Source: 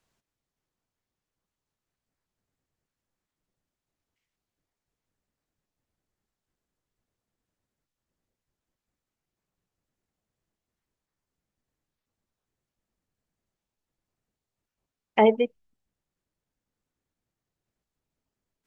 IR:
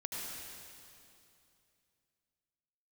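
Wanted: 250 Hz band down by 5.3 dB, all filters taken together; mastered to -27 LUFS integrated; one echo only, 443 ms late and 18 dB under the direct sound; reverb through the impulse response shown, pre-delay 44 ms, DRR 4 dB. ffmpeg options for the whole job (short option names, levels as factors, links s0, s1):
-filter_complex "[0:a]equalizer=f=250:t=o:g=-6,aecho=1:1:443:0.126,asplit=2[s0][s1];[1:a]atrim=start_sample=2205,adelay=44[s2];[s1][s2]afir=irnorm=-1:irlink=0,volume=0.531[s3];[s0][s3]amix=inputs=2:normalize=0,volume=0.841"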